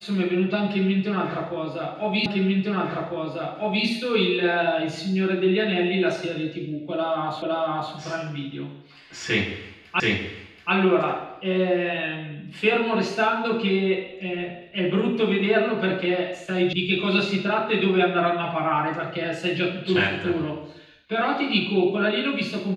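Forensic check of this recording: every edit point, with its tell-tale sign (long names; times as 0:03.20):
0:02.26: the same again, the last 1.6 s
0:07.42: the same again, the last 0.51 s
0:10.00: the same again, the last 0.73 s
0:16.73: cut off before it has died away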